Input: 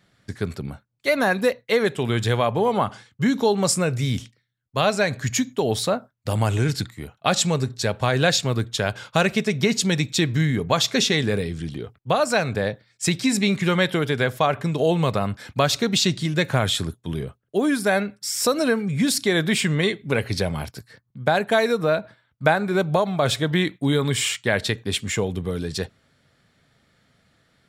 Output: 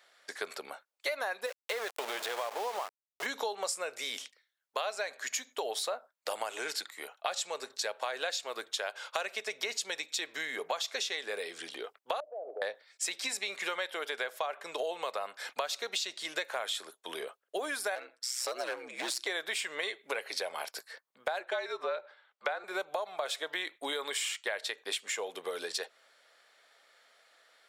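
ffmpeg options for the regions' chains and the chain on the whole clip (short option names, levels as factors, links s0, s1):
-filter_complex "[0:a]asettb=1/sr,asplit=3[s0][s1][s2];[s0]atrim=end=1.464[s3];[s1]atrim=start=1.46:end=3.26,asetpts=PTS-STARTPTS,afade=t=in:d=0.004:c=qsin,afade=t=out:st=1.796:d=0.004:c=qsin,highshelf=f=4600:g=-9.5,acompressor=threshold=0.0891:ratio=4:attack=3.2:release=140:knee=1:detection=peak,aeval=exprs='val(0)*gte(abs(val(0)),0.0335)':c=same[s4];[s2]atrim=start=3.256[s5];[s3][s4]acrossfade=d=0.004:c1=hsin:c2=qsin[s6];[s6][s5]acrossfade=d=0.004:c1=qsin:c2=hsin,asettb=1/sr,asplit=3[s7][s8][s9];[s7]atrim=end=12.204[s10];[s8]atrim=start=12.2:end=12.62,asetpts=PTS-STARTPTS,afade=t=in:d=0.004:c=qsin,afade=t=out:st=0.416:d=0.004:c=qsin,asuperpass=centerf=480:order=8:qfactor=1.2,acompressor=threshold=0.0251:ratio=6:attack=3.2:release=140:knee=1:detection=peak[s11];[s9]atrim=start=12.616[s12];[s10][s11]acrossfade=d=0.004:c1=hsin:c2=qsin[s13];[s13][s12]acrossfade=d=0.004:c1=qsin:c2=hsin,asettb=1/sr,asplit=3[s14][s15][s16];[s14]atrim=end=17.954[s17];[s15]atrim=start=17.95:end=19.27,asetpts=PTS-STARTPTS,afade=t=in:d=0.004:c=qsin,afade=t=out:st=1.316:d=0.004:c=qsin,highshelf=f=11000:g=-11,aeval=exprs='val(0)*sin(2*PI*63*n/s)':c=same,asoftclip=type=hard:threshold=0.1[s18];[s16]atrim=start=19.266[s19];[s17][s18]acrossfade=d=0.004:c1=hsin:c2=qsin[s20];[s20][s19]acrossfade=d=0.004:c1=qsin:c2=hsin,asettb=1/sr,asplit=3[s21][s22][s23];[s21]atrim=end=21.404[s24];[s22]atrim=start=21.4:end=22.64,asetpts=PTS-STARTPTS,afade=t=in:d=0.004:c=qsin,afade=t=out:st=1.236:d=0.004:c=qsin,highpass=140,lowpass=5100,afreqshift=-52[s25];[s23]atrim=start=22.636[s26];[s24][s25]acrossfade=d=0.004:c1=hsin:c2=qsin[s27];[s27][s26]acrossfade=d=0.004:c1=qsin:c2=hsin,highpass=f=520:w=0.5412,highpass=f=520:w=1.3066,acompressor=threshold=0.02:ratio=6,volume=1.19"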